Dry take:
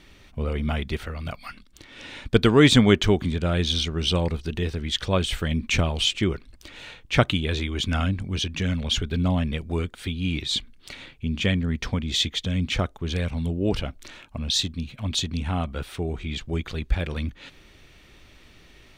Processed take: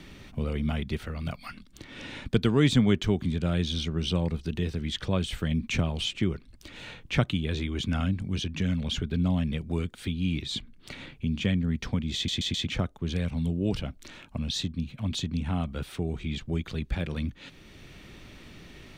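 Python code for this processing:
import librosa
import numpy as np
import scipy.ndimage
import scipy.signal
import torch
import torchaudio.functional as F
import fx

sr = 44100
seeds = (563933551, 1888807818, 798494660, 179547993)

y = fx.edit(x, sr, fx.stutter_over(start_s=12.15, slice_s=0.13, count=4), tone=tone)
y = fx.peak_eq(y, sr, hz=170.0, db=7.5, octaves=1.8)
y = fx.band_squash(y, sr, depth_pct=40)
y = F.gain(torch.from_numpy(y), -7.5).numpy()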